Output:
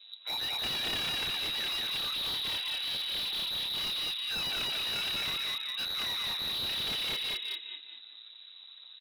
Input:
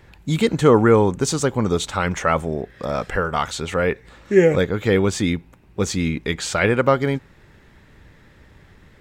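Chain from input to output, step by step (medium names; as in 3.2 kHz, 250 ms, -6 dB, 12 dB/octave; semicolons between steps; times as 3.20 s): spectrum inverted on a logarithmic axis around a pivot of 690 Hz; half-wave rectifier; distance through air 490 m; in parallel at -1.5 dB: compression 6:1, threshold -30 dBFS, peak gain reduction 14 dB; on the sum: flange 0.45 Hz, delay 9.2 ms, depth 2 ms, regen -55%; frequency inversion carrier 3.9 kHz; high-pass 380 Hz 12 dB/octave; on a send: frequency-shifting echo 205 ms, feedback 42%, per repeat -34 Hz, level -3 dB; on the sum: slew-rate limiter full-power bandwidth 88 Hz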